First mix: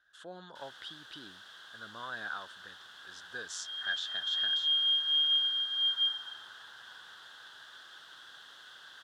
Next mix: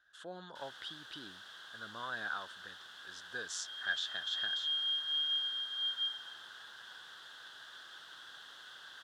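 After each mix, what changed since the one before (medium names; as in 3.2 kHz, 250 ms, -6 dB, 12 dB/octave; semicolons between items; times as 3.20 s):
second sound -6.5 dB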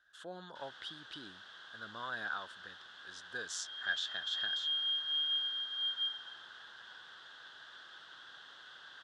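first sound: add distance through air 95 m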